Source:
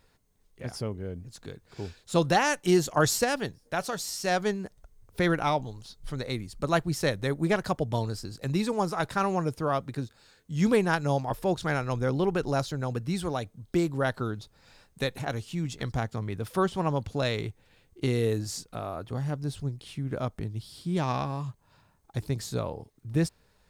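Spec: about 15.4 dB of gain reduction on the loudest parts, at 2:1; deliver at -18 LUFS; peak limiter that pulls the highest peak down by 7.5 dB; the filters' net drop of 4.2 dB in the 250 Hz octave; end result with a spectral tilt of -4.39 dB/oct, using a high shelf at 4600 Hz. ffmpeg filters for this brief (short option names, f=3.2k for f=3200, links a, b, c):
-af "equalizer=f=250:t=o:g=-7,highshelf=f=4.6k:g=6,acompressor=threshold=-49dB:ratio=2,volume=27dB,alimiter=limit=-6dB:level=0:latency=1"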